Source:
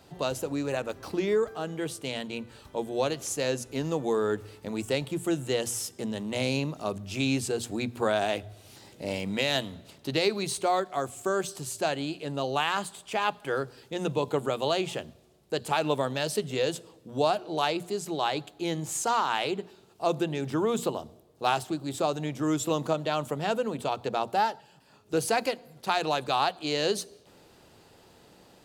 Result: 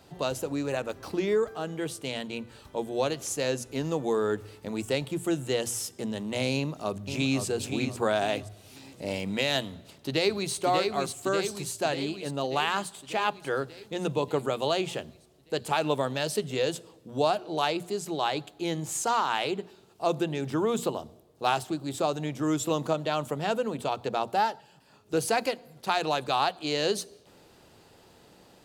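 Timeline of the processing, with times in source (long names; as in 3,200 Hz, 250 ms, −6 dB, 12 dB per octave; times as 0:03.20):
0:06.55–0:07.44: delay throw 520 ms, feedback 35%, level −7 dB
0:09.69–0:10.53: delay throw 590 ms, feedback 65%, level −4 dB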